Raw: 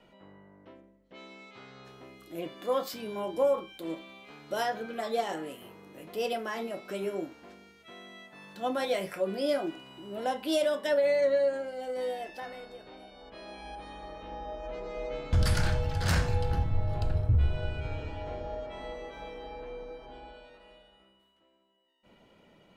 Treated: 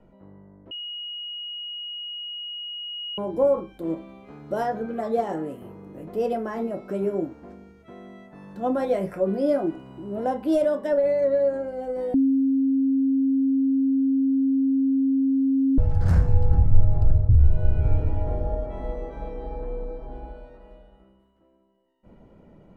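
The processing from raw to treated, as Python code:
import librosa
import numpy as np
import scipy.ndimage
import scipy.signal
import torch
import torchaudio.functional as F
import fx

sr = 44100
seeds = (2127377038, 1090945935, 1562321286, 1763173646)

y = fx.edit(x, sr, fx.bleep(start_s=0.71, length_s=2.47, hz=2890.0, db=-17.0),
    fx.bleep(start_s=12.14, length_s=3.64, hz=269.0, db=-20.5), tone=tone)
y = fx.tilt_eq(y, sr, slope=-3.0)
y = fx.rider(y, sr, range_db=4, speed_s=0.5)
y = fx.peak_eq(y, sr, hz=3300.0, db=-10.5, octaves=1.5)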